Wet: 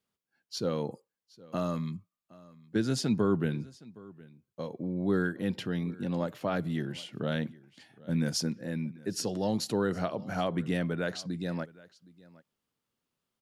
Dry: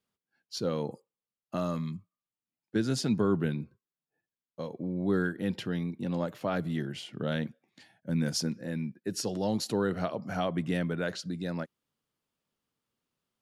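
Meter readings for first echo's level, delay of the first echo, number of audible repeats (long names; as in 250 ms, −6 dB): −22.0 dB, 766 ms, 1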